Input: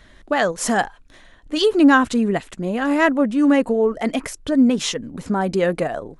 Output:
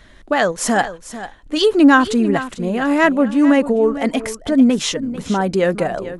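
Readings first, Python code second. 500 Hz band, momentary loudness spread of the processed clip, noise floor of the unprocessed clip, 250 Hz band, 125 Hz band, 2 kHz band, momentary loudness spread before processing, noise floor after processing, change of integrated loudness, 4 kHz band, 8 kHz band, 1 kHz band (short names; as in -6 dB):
+2.5 dB, 12 LU, -49 dBFS, +3.0 dB, +2.5 dB, +2.5 dB, 11 LU, -44 dBFS, +2.5 dB, +2.5 dB, +2.5 dB, +2.5 dB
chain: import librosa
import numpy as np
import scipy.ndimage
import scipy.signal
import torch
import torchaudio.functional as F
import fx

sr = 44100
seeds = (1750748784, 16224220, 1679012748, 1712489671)

y = x + 10.0 ** (-13.5 / 20.0) * np.pad(x, (int(445 * sr / 1000.0), 0))[:len(x)]
y = F.gain(torch.from_numpy(y), 2.5).numpy()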